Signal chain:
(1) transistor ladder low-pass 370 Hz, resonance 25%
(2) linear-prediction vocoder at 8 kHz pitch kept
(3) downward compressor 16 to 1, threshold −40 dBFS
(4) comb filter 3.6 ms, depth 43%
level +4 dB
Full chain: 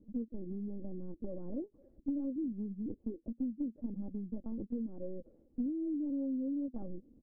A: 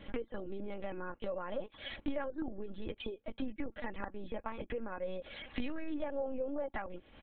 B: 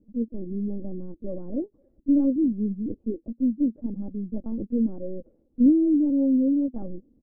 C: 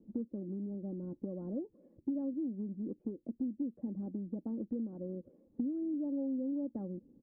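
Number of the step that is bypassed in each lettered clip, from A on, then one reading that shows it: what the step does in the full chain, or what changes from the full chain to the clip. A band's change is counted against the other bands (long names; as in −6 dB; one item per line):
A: 1, change in crest factor +3.0 dB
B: 3, average gain reduction 10.5 dB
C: 2, change in momentary loudness spread −3 LU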